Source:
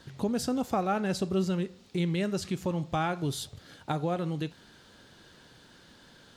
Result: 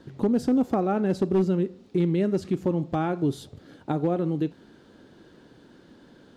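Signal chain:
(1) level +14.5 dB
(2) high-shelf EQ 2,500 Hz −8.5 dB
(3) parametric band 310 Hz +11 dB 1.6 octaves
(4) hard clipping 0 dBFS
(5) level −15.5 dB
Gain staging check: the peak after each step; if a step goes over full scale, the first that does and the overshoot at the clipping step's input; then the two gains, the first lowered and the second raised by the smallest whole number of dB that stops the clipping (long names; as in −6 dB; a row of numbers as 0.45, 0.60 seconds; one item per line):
−2.5, −3.0, +4.5, 0.0, −15.5 dBFS
step 3, 4.5 dB
step 1 +9.5 dB, step 5 −10.5 dB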